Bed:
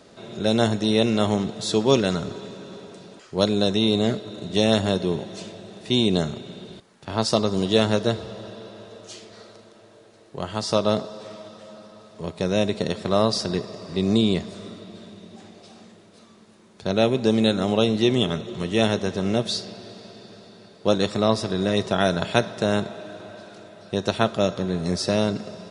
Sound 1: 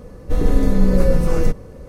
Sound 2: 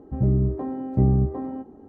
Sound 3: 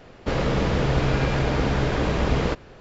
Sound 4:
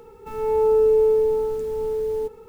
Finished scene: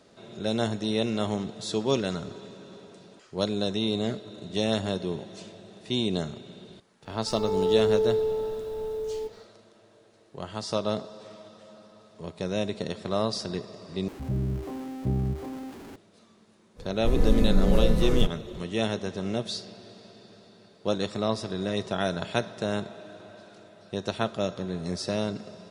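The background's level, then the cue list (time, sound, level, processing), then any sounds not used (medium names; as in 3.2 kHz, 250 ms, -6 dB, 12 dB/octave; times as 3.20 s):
bed -7 dB
7.00 s: add 4 -7 dB, fades 0.10 s
14.08 s: replace with 2 -9 dB + jump at every zero crossing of -30.5 dBFS
16.75 s: add 1 -6.5 dB, fades 0.05 s
not used: 3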